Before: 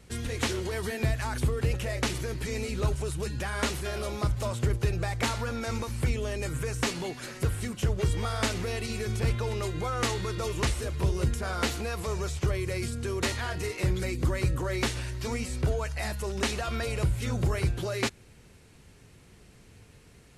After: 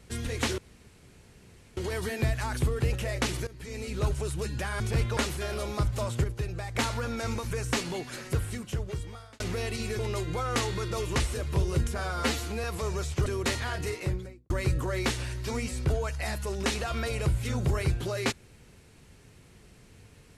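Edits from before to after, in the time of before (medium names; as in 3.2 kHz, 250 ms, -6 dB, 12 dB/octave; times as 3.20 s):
0.58 s: insert room tone 1.19 s
2.28–2.89 s: fade in, from -18 dB
4.68–5.19 s: gain -5.5 dB
5.95–6.61 s: delete
7.37–8.50 s: fade out
9.09–9.46 s: move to 3.61 s
11.45–11.89 s: stretch 1.5×
12.51–13.03 s: delete
13.63–14.27 s: studio fade out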